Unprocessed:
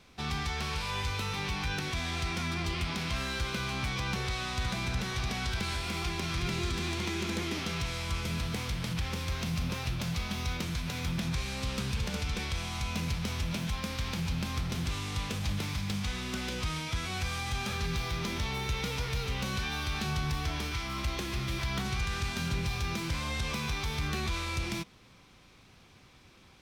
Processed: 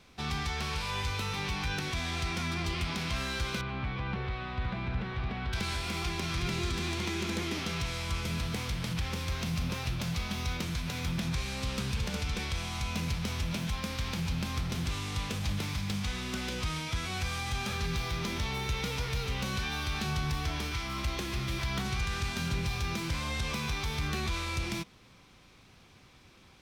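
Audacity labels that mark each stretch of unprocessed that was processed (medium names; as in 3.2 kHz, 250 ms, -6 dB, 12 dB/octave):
3.610000	5.530000	distance through air 400 m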